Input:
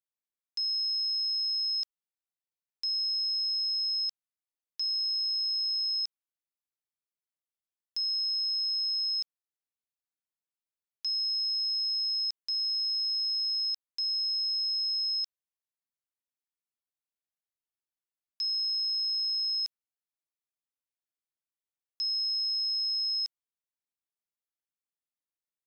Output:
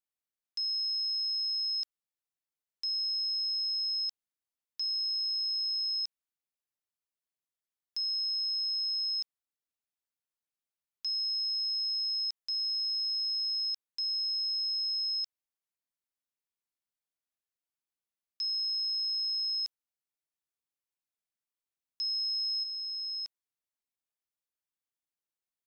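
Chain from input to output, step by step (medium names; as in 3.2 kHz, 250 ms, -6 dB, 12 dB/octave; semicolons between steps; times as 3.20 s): 22.63–23.25 s: low-pass 4.1 kHz -> 4.7 kHz 12 dB/octave; trim -2 dB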